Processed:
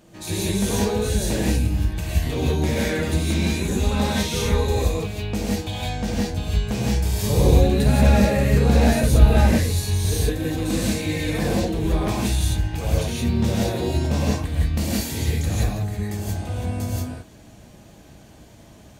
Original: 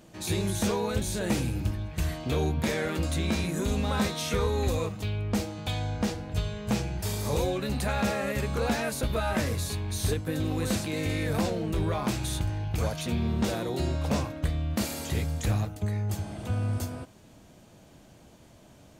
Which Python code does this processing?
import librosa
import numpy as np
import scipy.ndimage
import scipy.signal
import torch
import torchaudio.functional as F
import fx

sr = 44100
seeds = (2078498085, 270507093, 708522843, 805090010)

y = fx.low_shelf(x, sr, hz=360.0, db=8.5, at=(7.22, 9.41))
y = fx.rev_gated(y, sr, seeds[0], gate_ms=200, shape='rising', drr_db=-5.5)
y = fx.dynamic_eq(y, sr, hz=1300.0, q=1.5, threshold_db=-43.0, ratio=4.0, max_db=-5)